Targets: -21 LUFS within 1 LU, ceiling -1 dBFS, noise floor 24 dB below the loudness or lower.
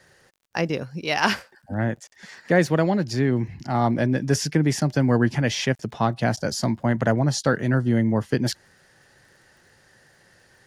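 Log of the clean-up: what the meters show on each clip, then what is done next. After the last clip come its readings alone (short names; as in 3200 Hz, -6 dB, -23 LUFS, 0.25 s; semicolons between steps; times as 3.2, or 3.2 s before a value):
ticks 41/s; loudness -23.0 LUFS; peak -5.0 dBFS; loudness target -21.0 LUFS
-> de-click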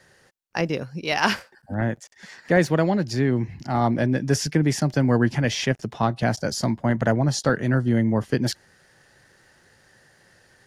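ticks 0.47/s; loudness -23.0 LUFS; peak -5.0 dBFS; loudness target -21.0 LUFS
-> gain +2 dB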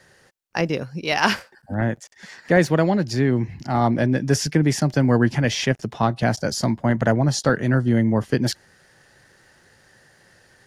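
loudness -21.0 LUFS; peak -3.0 dBFS; noise floor -56 dBFS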